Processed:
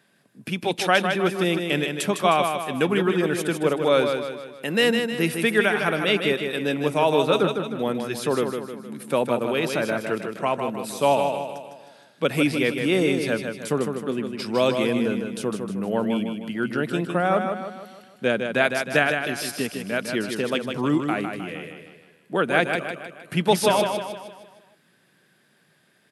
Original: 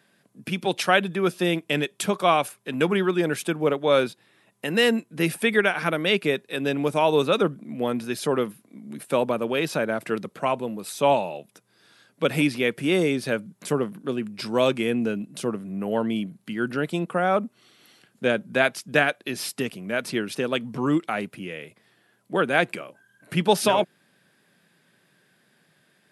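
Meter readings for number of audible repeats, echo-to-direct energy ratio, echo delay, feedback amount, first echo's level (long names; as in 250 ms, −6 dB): 5, −5.0 dB, 155 ms, 47%, −6.0 dB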